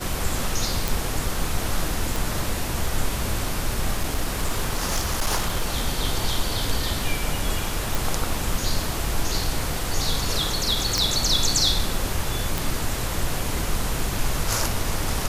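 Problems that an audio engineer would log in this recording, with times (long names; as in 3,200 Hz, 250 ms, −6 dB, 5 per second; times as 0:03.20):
0:00.88: click
0:02.16: click
0:03.93–0:05.68: clipping −17.5 dBFS
0:07.95: click
0:10.98: click
0:12.58: click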